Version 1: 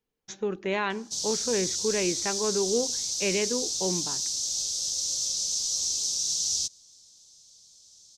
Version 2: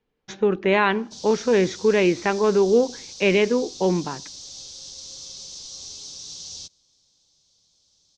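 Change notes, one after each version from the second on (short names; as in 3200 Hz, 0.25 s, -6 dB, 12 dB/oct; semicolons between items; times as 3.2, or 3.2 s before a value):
speech +9.5 dB; master: add LPF 3400 Hz 12 dB/oct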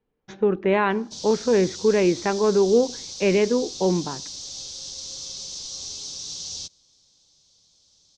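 speech: add high shelf 2300 Hz -11.5 dB; background +3.5 dB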